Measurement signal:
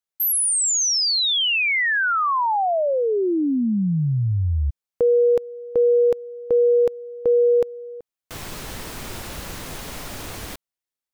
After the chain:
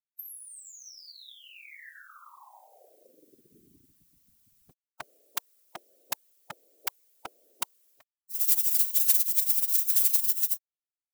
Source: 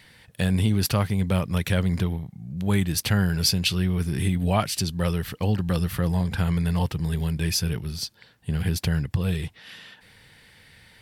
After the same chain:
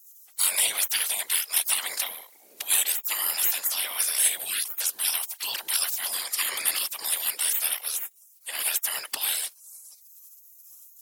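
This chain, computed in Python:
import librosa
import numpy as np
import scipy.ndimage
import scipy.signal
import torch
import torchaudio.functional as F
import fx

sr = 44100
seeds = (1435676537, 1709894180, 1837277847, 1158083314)

y = fx.spec_gate(x, sr, threshold_db=-30, keep='weak')
y = fx.riaa(y, sr, side='recording')
y = fx.whisperise(y, sr, seeds[0])
y = F.gain(torch.from_numpy(y), 8.5).numpy()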